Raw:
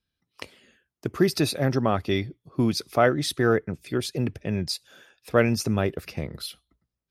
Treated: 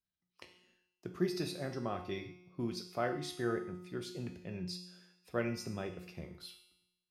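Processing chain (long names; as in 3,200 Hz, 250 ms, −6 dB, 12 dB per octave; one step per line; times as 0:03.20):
parametric band 12,000 Hz −4.5 dB 0.74 octaves
tuned comb filter 180 Hz, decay 0.92 s, harmonics all, mix 80%
reverb whose tail is shaped and stops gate 170 ms falling, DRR 7 dB
level −3 dB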